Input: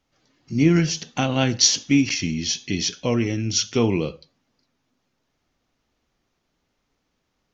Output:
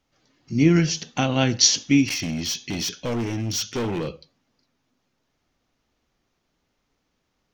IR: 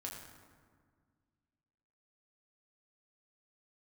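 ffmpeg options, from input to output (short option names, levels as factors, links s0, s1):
-filter_complex "[0:a]asettb=1/sr,asplit=3[s0][s1][s2];[s0]atrim=end=2.074[s3];[s1]atrim=start=2.07:end=4.08,asetpts=PTS-STARTPTS,afade=t=in:d=0.004:c=qsin,afade=t=out:st=2.006:d=0.004:c=qsin,asoftclip=type=hard:threshold=0.0708[s4];[s2]atrim=start=4.076[s5];[s3][s4]acrossfade=d=0.004:c1=hsin:c2=qsin[s6];[s6][s5]acrossfade=d=0.004:c1=qsin:c2=hsin"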